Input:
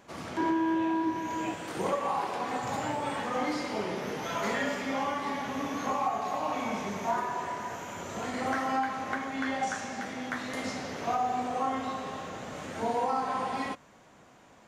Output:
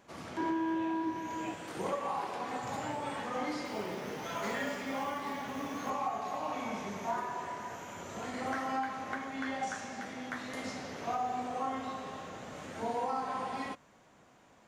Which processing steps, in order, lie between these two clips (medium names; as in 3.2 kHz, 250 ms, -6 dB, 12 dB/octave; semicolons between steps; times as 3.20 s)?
3.65–5.90 s: companded quantiser 6-bit; trim -5 dB